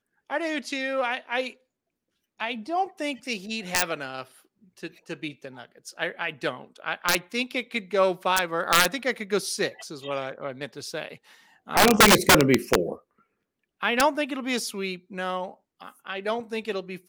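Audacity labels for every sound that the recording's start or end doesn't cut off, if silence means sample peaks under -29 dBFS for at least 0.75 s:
2.400000	12.930000	sound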